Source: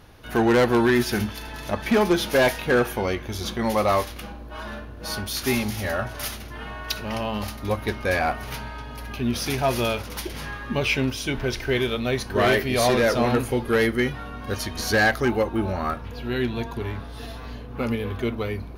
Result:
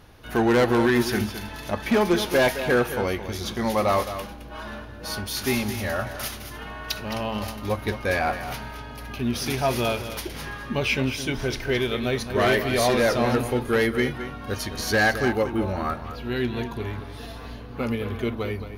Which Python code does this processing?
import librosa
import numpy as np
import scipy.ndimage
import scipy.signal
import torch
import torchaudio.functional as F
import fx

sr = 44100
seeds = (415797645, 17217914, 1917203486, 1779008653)

y = x + 10.0 ** (-11.0 / 20.0) * np.pad(x, (int(216 * sr / 1000.0), 0))[:len(x)]
y = F.gain(torch.from_numpy(y), -1.0).numpy()